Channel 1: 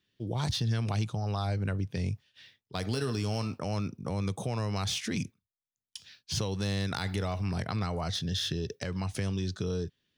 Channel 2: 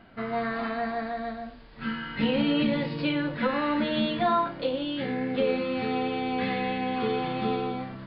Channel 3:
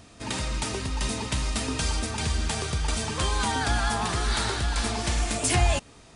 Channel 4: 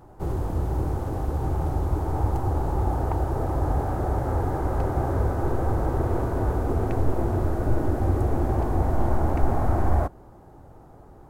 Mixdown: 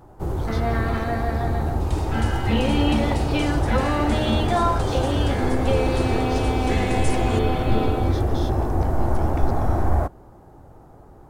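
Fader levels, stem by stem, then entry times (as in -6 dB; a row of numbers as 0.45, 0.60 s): -9.0, +2.5, -10.0, +1.5 dB; 0.00, 0.30, 1.60, 0.00 s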